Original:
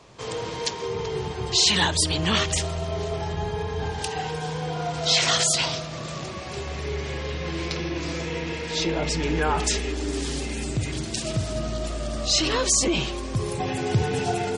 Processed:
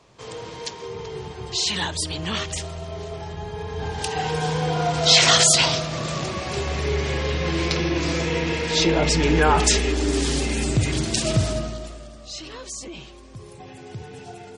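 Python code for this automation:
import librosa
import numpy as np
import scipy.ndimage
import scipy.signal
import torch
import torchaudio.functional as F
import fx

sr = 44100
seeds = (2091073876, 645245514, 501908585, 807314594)

y = fx.gain(x, sr, db=fx.line((3.46, -4.5), (4.4, 6.0), (11.46, 6.0), (11.74, -3.0), (12.18, -14.0)))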